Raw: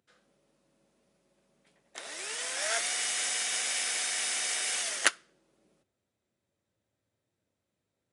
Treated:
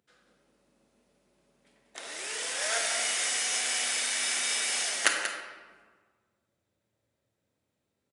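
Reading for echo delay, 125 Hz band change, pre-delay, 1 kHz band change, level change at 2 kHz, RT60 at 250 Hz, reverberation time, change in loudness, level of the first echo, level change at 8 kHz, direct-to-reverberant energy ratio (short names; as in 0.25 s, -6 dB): 0.186 s, n/a, 24 ms, +2.5 dB, +2.5 dB, 1.4 s, 1.4 s, +1.5 dB, -9.5 dB, +1.5 dB, 1.0 dB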